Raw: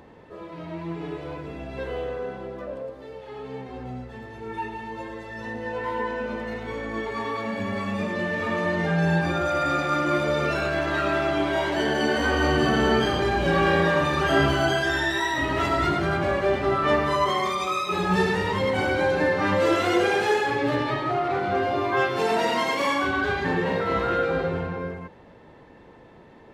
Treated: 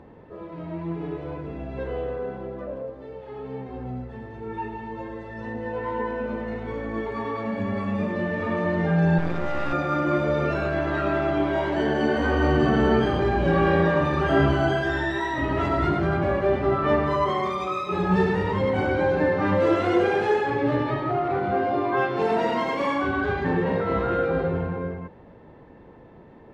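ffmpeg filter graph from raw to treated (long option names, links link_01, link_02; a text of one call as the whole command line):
ffmpeg -i in.wav -filter_complex "[0:a]asettb=1/sr,asplit=3[link_01][link_02][link_03];[link_01]atrim=end=9.184[link_04];[link_02]atrim=start=9.18:end=9.73,asetpts=PTS-STARTPTS,afade=type=in:duration=0.004:curve=qsin,afade=type=out:start_time=0.546:duration=0.004:curve=qsin,asplit=2[link_05][link_06];[link_06]adelay=42,volume=-11dB[link_07];[link_05][link_07]amix=inputs=2:normalize=0,atrim=end_sample=24255,aeval=exprs='max(val(0),0)':channel_layout=same[link_08];[link_03]atrim=start=9.726[link_09];[link_04][link_08]acrossfade=duration=0.004:curve1=hsin:curve2=qsin[link_10];[link_10][link_09]acrossfade=duration=0.004:curve1=qsin:curve2=hsin,asettb=1/sr,asplit=3[link_11][link_12][link_13];[link_11]atrim=end=21.514[link_14];[link_12]atrim=start=21.51:end=22.22,asetpts=PTS-STARTPTS,afade=type=in:duration=0.004:curve=qsin,afade=type=out:start_time=0.706:duration=0.004:curve=qsin,highpass=130,lowpass=7300,asplit=2[link_15][link_16];[link_16]adelay=14,volume=-12.5dB[link_17];[link_15][link_17]amix=inputs=2:normalize=0,atrim=end_sample=31311[link_18];[link_13]atrim=start=22.216[link_19];[link_14][link_18]acrossfade=duration=0.004:curve1=hsin:curve2=qsin[link_20];[link_20][link_19]acrossfade=duration=0.004:curve1=qsin:curve2=hsin,lowpass=frequency=1500:poles=1,lowshelf=frequency=380:gain=3.5" out.wav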